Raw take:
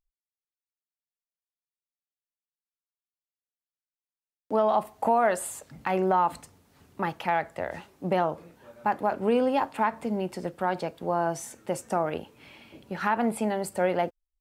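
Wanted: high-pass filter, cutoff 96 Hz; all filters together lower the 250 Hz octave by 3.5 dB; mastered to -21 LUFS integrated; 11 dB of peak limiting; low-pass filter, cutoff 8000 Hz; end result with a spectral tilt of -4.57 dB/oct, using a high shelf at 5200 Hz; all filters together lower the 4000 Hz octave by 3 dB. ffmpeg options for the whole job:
-af "highpass=96,lowpass=8k,equalizer=f=250:t=o:g=-4.5,equalizer=f=4k:t=o:g=-7.5,highshelf=f=5.2k:g=7.5,volume=14dB,alimiter=limit=-9dB:level=0:latency=1"

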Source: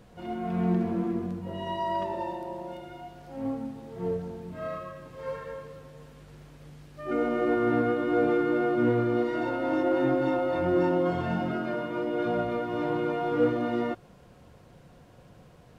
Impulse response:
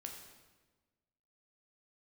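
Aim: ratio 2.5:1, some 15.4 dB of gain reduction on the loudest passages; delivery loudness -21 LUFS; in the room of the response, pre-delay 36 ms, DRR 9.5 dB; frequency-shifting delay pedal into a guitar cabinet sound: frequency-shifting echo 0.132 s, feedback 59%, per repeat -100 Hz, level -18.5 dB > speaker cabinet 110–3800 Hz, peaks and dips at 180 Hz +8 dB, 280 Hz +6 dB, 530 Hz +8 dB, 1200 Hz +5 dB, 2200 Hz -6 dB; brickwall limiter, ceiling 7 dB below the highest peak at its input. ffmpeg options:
-filter_complex "[0:a]acompressor=threshold=-45dB:ratio=2.5,alimiter=level_in=12dB:limit=-24dB:level=0:latency=1,volume=-12dB,asplit=2[a][b];[1:a]atrim=start_sample=2205,adelay=36[c];[b][c]afir=irnorm=-1:irlink=0,volume=-6dB[d];[a][d]amix=inputs=2:normalize=0,asplit=6[e][f][g][h][i][j];[f]adelay=132,afreqshift=-100,volume=-18.5dB[k];[g]adelay=264,afreqshift=-200,volume=-23.1dB[l];[h]adelay=396,afreqshift=-300,volume=-27.7dB[m];[i]adelay=528,afreqshift=-400,volume=-32.2dB[n];[j]adelay=660,afreqshift=-500,volume=-36.8dB[o];[e][k][l][m][n][o]amix=inputs=6:normalize=0,highpass=110,equalizer=f=180:t=q:w=4:g=8,equalizer=f=280:t=q:w=4:g=6,equalizer=f=530:t=q:w=4:g=8,equalizer=f=1.2k:t=q:w=4:g=5,equalizer=f=2.2k:t=q:w=4:g=-6,lowpass=f=3.8k:w=0.5412,lowpass=f=3.8k:w=1.3066,volume=19dB"

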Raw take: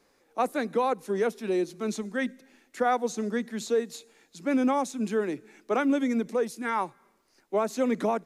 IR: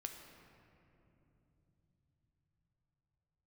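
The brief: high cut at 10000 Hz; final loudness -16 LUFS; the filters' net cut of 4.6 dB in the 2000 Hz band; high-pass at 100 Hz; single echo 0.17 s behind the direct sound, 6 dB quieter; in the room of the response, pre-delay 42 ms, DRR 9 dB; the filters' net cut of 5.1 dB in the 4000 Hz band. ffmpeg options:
-filter_complex "[0:a]highpass=100,lowpass=10k,equalizer=f=2k:t=o:g=-5.5,equalizer=f=4k:t=o:g=-4.5,aecho=1:1:170:0.501,asplit=2[a][b];[1:a]atrim=start_sample=2205,adelay=42[c];[b][c]afir=irnorm=-1:irlink=0,volume=-6dB[d];[a][d]amix=inputs=2:normalize=0,volume=12dB"

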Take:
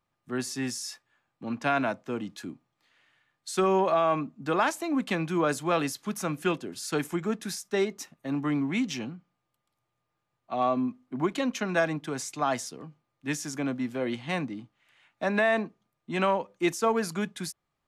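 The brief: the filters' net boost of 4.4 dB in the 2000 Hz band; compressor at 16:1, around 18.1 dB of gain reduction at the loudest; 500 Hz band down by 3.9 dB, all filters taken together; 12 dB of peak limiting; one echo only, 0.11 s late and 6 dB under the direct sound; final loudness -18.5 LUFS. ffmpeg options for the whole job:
-af "equalizer=f=500:t=o:g=-6,equalizer=f=2k:t=o:g=6,acompressor=threshold=-38dB:ratio=16,alimiter=level_in=14dB:limit=-24dB:level=0:latency=1,volume=-14dB,aecho=1:1:110:0.501,volume=27.5dB"

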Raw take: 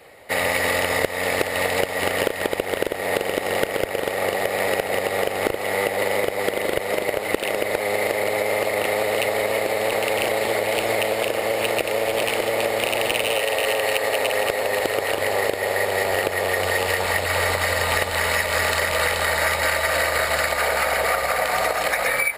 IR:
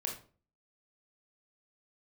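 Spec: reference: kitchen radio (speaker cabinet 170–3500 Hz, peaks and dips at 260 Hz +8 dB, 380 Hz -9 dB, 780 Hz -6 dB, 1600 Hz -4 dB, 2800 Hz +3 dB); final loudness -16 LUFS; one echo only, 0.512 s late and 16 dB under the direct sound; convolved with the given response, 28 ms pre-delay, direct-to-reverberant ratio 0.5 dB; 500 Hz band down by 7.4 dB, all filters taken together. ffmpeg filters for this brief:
-filter_complex "[0:a]equalizer=f=500:t=o:g=-6,aecho=1:1:512:0.158,asplit=2[a][b];[1:a]atrim=start_sample=2205,adelay=28[c];[b][c]afir=irnorm=-1:irlink=0,volume=-1.5dB[d];[a][d]amix=inputs=2:normalize=0,highpass=170,equalizer=f=260:t=q:w=4:g=8,equalizer=f=380:t=q:w=4:g=-9,equalizer=f=780:t=q:w=4:g=-6,equalizer=f=1.6k:t=q:w=4:g=-4,equalizer=f=2.8k:t=q:w=4:g=3,lowpass=f=3.5k:w=0.5412,lowpass=f=3.5k:w=1.3066,volume=6dB"

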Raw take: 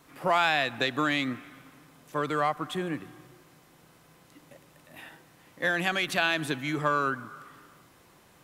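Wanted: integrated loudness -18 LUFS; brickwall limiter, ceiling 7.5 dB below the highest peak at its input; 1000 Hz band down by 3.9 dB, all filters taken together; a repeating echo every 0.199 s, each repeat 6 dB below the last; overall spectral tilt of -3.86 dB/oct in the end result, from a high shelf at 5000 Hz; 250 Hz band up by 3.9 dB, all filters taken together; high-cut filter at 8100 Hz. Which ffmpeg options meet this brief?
-af "lowpass=8.1k,equalizer=f=250:t=o:g=5.5,equalizer=f=1k:t=o:g=-5.5,highshelf=f=5k:g=-4.5,alimiter=limit=-20.5dB:level=0:latency=1,aecho=1:1:199|398|597|796|995|1194:0.501|0.251|0.125|0.0626|0.0313|0.0157,volume=13dB"

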